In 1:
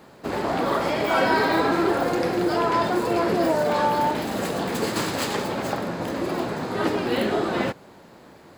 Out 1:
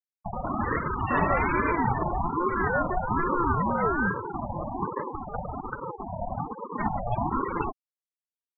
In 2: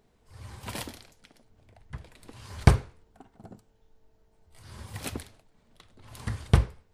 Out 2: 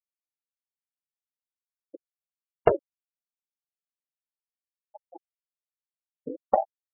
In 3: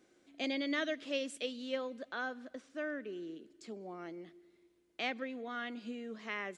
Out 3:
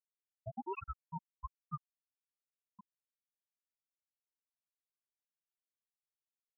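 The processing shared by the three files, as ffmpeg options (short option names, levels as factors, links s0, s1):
-af "afftfilt=real='re*gte(hypot(re,im),0.178)':imag='im*gte(hypot(re,im),0.178)':win_size=1024:overlap=0.75,aeval=exprs='val(0)*sin(2*PI*540*n/s+540*0.35/1.2*sin(2*PI*1.2*n/s))':c=same"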